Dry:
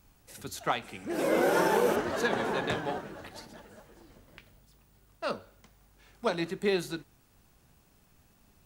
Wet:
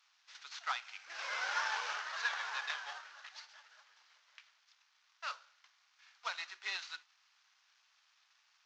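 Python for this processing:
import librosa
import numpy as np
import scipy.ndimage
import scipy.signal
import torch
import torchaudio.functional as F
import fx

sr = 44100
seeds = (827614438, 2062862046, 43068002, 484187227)

y = fx.cvsd(x, sr, bps=32000)
y = scipy.signal.sosfilt(scipy.signal.butter(4, 1100.0, 'highpass', fs=sr, output='sos'), y)
y = F.gain(torch.from_numpy(y), -2.5).numpy()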